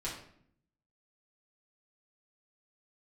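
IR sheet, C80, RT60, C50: 9.0 dB, 0.65 s, 5.0 dB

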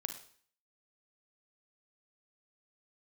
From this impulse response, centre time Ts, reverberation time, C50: 15 ms, 0.50 s, 8.0 dB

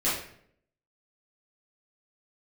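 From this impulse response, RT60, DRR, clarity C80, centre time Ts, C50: 0.65 s, -10.5 dB, 6.5 dB, 50 ms, 2.5 dB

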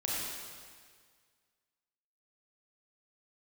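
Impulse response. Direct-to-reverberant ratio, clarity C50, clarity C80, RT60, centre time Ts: -6.0 dB, -3.0 dB, -1.0 dB, 1.8 s, 129 ms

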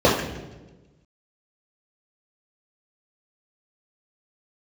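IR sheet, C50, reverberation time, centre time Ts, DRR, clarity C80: 4.0 dB, 1.2 s, 43 ms, -7.5 dB, 7.5 dB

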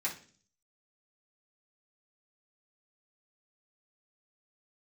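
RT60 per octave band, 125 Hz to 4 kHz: 0.70 s, 0.65 s, 0.50 s, 0.35 s, 0.40 s, 0.50 s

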